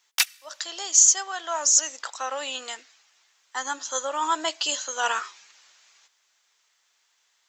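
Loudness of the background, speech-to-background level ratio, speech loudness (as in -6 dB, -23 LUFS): -25.0 LUFS, 2.0 dB, -23.0 LUFS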